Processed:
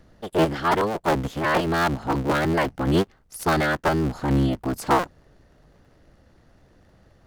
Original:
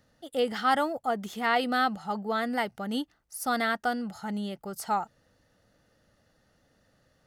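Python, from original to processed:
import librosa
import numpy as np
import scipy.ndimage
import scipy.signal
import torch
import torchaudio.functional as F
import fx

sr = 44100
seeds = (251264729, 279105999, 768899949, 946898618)

y = fx.cycle_switch(x, sr, every=3, mode='inverted')
y = fx.tilt_eq(y, sr, slope=-2.0)
y = fx.rider(y, sr, range_db=5, speed_s=0.5)
y = y * 10.0 ** (5.5 / 20.0)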